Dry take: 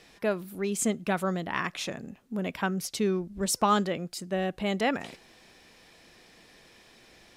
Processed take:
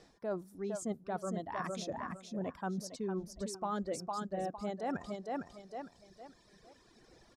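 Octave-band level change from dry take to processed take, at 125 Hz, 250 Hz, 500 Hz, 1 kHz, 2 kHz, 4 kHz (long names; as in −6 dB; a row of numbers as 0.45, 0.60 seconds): −9.0, −9.0, −8.0, −8.5, −14.0, −14.0 decibels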